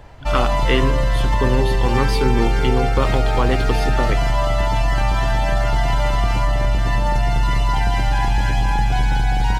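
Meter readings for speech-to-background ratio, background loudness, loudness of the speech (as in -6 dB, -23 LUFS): -4.0 dB, -20.0 LUFS, -24.0 LUFS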